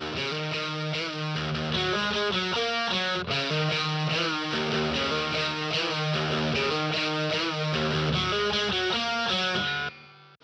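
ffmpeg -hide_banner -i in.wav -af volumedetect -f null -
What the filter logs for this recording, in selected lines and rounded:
mean_volume: -27.8 dB
max_volume: -14.4 dB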